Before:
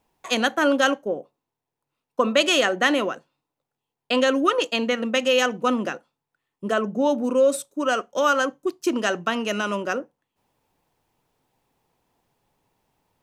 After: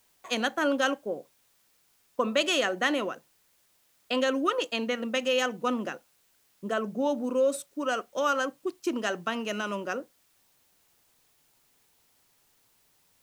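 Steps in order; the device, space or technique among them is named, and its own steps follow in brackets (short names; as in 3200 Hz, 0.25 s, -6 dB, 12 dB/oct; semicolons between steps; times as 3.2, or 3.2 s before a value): plain cassette with noise reduction switched in (mismatched tape noise reduction decoder only; wow and flutter 17 cents; white noise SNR 36 dB); gain -6.5 dB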